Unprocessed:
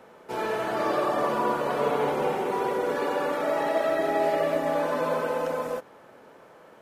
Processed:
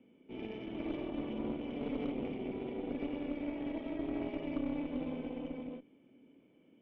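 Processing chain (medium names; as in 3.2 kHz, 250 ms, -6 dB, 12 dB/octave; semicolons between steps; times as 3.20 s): cascade formant filter i; Chebyshev shaper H 4 -15 dB, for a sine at -27 dBFS; trim +1 dB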